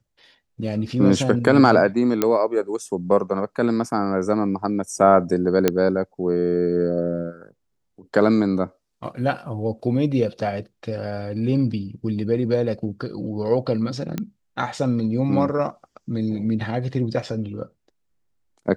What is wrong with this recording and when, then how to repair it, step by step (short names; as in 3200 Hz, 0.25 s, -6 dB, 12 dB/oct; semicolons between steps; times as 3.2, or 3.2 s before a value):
2.22 pop -5 dBFS
5.68 pop -3 dBFS
14.18 pop -13 dBFS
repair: de-click